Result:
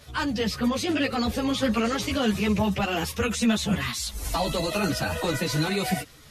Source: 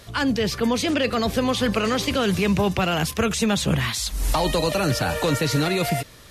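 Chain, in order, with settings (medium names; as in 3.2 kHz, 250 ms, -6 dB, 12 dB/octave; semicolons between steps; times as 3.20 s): coarse spectral quantiser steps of 15 dB; formant-preserving pitch shift +1 st; three-phase chorus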